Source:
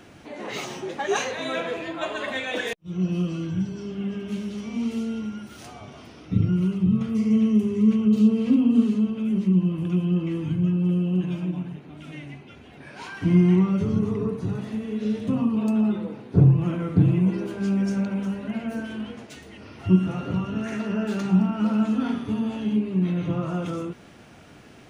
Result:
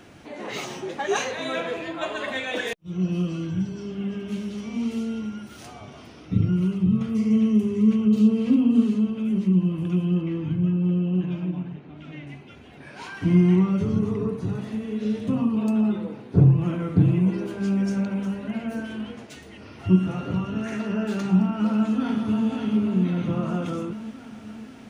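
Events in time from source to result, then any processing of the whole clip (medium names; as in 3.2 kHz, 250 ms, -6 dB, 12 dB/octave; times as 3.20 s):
10.21–12.27 s: distance through air 140 m
21.54–22.49 s: echo throw 540 ms, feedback 65%, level -6.5 dB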